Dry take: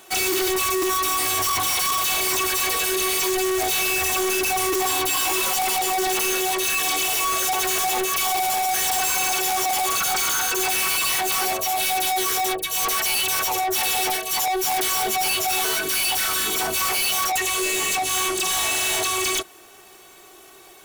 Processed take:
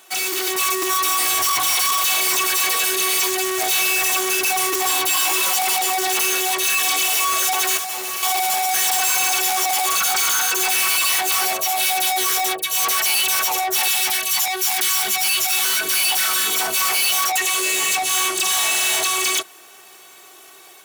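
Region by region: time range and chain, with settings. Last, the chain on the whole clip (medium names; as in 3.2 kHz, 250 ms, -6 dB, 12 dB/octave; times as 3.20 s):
7.77–8.23 s: flutter echo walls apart 11.1 m, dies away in 1.4 s + overload inside the chain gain 28.5 dB
13.88–15.81 s: high-pass 51 Hz + peaking EQ 540 Hz -12 dB 1.3 oct + level flattener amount 50%
whole clip: high-pass 180 Hz 12 dB/octave; peaking EQ 300 Hz -7 dB 2.4 oct; level rider gain up to 4 dB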